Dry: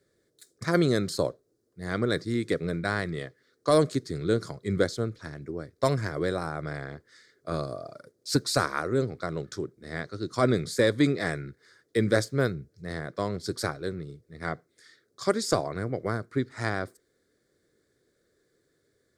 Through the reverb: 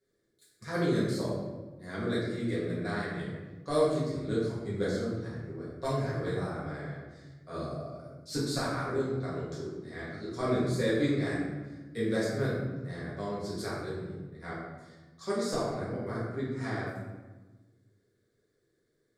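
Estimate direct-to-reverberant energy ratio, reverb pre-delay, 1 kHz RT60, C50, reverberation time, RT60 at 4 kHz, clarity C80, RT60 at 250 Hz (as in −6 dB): −8.5 dB, 4 ms, 1.2 s, 0.5 dB, 1.3 s, 0.80 s, 2.5 dB, 1.8 s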